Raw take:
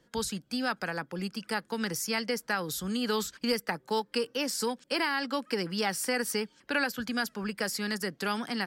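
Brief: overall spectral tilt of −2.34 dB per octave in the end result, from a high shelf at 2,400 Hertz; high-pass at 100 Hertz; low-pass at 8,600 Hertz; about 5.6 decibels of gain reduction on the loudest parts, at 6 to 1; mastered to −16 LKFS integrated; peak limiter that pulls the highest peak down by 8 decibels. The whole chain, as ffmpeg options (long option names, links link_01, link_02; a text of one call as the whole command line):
ffmpeg -i in.wav -af "highpass=100,lowpass=8600,highshelf=frequency=2400:gain=7.5,acompressor=threshold=-28dB:ratio=6,volume=18dB,alimiter=limit=-5.5dB:level=0:latency=1" out.wav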